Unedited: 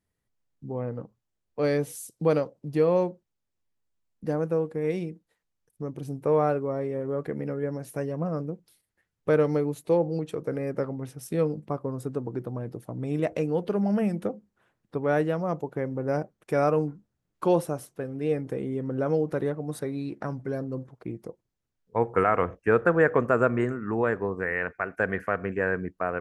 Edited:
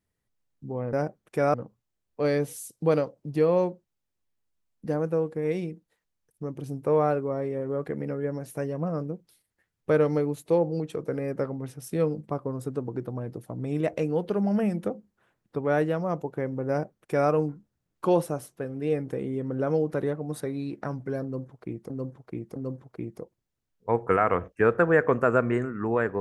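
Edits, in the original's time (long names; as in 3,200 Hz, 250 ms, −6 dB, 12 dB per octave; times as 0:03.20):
0:16.08–0:16.69: duplicate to 0:00.93
0:20.63–0:21.29: repeat, 3 plays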